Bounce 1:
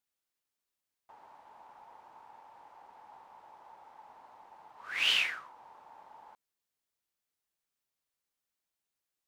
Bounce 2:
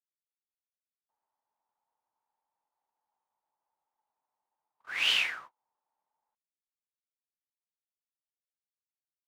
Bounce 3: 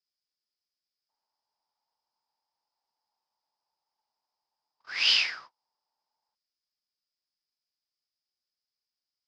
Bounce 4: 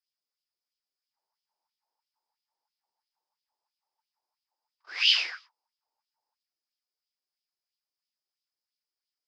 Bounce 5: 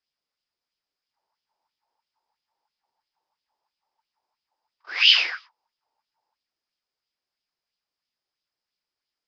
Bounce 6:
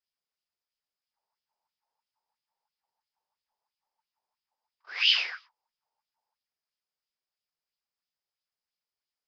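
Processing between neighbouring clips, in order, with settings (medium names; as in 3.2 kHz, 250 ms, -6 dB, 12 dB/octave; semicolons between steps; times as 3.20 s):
gate -47 dBFS, range -34 dB; trim +1 dB
resonant low-pass 5 kHz, resonance Q 13; trim -1.5 dB
LFO high-pass sine 3 Hz 330–3200 Hz; trim -4 dB
Gaussian low-pass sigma 1.5 samples; trim +8.5 dB
peaking EQ 310 Hz -11 dB 0.32 oct; trim -7 dB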